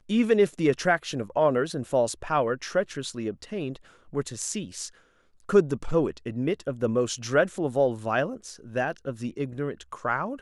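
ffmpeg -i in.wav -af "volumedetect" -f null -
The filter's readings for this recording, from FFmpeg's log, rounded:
mean_volume: -26.9 dB
max_volume: -7.6 dB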